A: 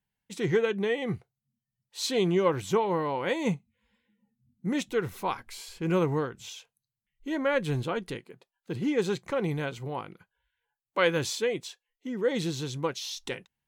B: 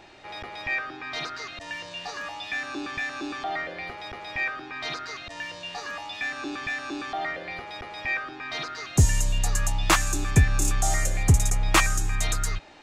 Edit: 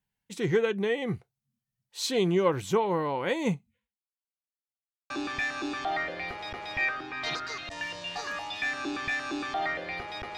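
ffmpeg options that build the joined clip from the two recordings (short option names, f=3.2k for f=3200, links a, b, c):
-filter_complex "[0:a]apad=whole_dur=10.37,atrim=end=10.37,asplit=2[a][b];[a]atrim=end=4.27,asetpts=PTS-STARTPTS,afade=t=out:st=3.76:d=0.51:c=exp[c];[b]atrim=start=4.27:end=5.1,asetpts=PTS-STARTPTS,volume=0[d];[1:a]atrim=start=2.69:end=7.96,asetpts=PTS-STARTPTS,afade=t=in:d=0.004:c=hsin[e];[c][d][e]concat=n=3:v=0:a=1"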